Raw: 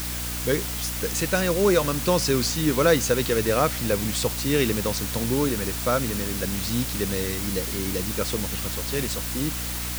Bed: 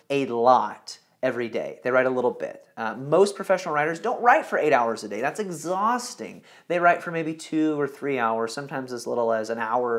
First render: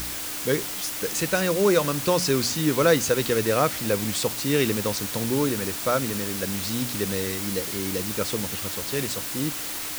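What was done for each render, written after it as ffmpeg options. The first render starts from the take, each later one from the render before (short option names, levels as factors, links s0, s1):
-af "bandreject=f=60:t=h:w=4,bandreject=f=120:t=h:w=4,bandreject=f=180:t=h:w=4,bandreject=f=240:t=h:w=4"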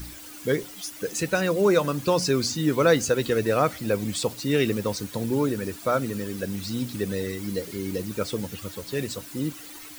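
-af "afftdn=nr=13:nf=-32"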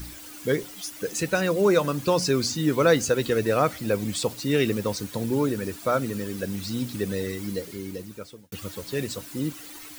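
-filter_complex "[0:a]asplit=2[s0][s1];[s0]atrim=end=8.52,asetpts=PTS-STARTPTS,afade=t=out:st=7.41:d=1.11[s2];[s1]atrim=start=8.52,asetpts=PTS-STARTPTS,afade=t=in:d=0.004:c=hsin[s3];[s2][s3]concat=n=2:v=0:a=1"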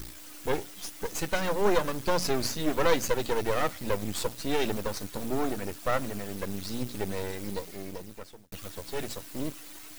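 -af "aeval=exprs='max(val(0),0)':c=same"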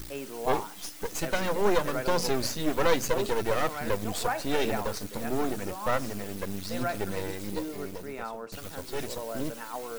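-filter_complex "[1:a]volume=0.2[s0];[0:a][s0]amix=inputs=2:normalize=0"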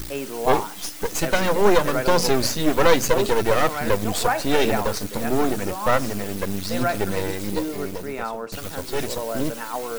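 -af "volume=2.51,alimiter=limit=0.708:level=0:latency=1"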